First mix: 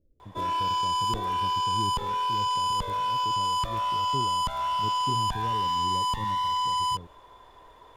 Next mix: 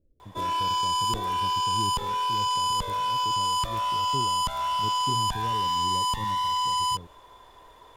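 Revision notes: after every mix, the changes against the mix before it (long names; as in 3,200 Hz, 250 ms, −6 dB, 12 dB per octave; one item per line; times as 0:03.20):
background: add high-shelf EQ 3,900 Hz +7 dB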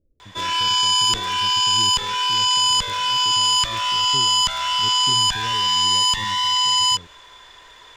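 master: add flat-topped bell 3,300 Hz +14 dB 2.8 octaves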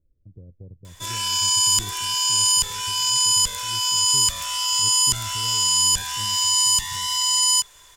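background: entry +0.65 s
master: add drawn EQ curve 110 Hz 0 dB, 230 Hz −7 dB, 860 Hz −9 dB, 3,600 Hz −6 dB, 10,000 Hz +14 dB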